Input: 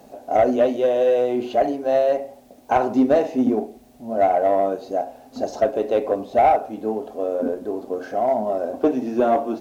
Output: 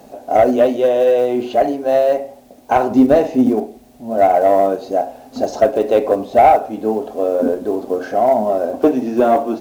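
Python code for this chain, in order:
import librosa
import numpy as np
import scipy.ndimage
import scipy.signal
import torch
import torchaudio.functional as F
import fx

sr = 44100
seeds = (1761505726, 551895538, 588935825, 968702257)

p1 = fx.block_float(x, sr, bits=7)
p2 = fx.rider(p1, sr, range_db=10, speed_s=2.0)
p3 = p1 + (p2 * 10.0 ** (0.0 / 20.0))
p4 = fx.low_shelf(p3, sr, hz=170.0, db=7.5, at=(2.91, 3.46))
y = p4 * 10.0 ** (-1.0 / 20.0)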